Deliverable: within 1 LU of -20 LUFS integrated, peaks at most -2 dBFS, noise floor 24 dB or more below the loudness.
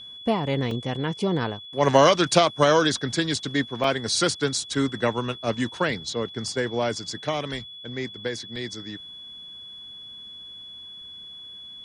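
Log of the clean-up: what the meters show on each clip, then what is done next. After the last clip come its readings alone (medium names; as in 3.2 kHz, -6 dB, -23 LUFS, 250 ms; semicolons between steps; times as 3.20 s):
dropouts 3; longest dropout 2.3 ms; steady tone 3.4 kHz; tone level -39 dBFS; loudness -24.5 LUFS; peak level -3.5 dBFS; loudness target -20.0 LUFS
-> interpolate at 0.71/3.84/8.56 s, 2.3 ms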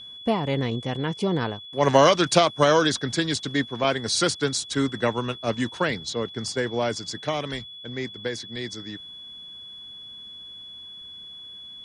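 dropouts 0; steady tone 3.4 kHz; tone level -39 dBFS
-> band-stop 3.4 kHz, Q 30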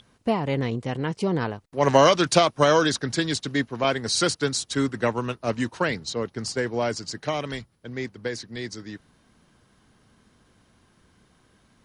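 steady tone not found; loudness -24.5 LUFS; peak level -3.5 dBFS; loudness target -20.0 LUFS
-> trim +4.5 dB; peak limiter -2 dBFS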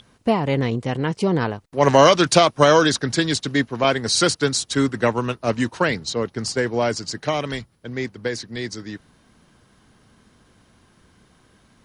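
loudness -20.0 LUFS; peak level -2.0 dBFS; noise floor -58 dBFS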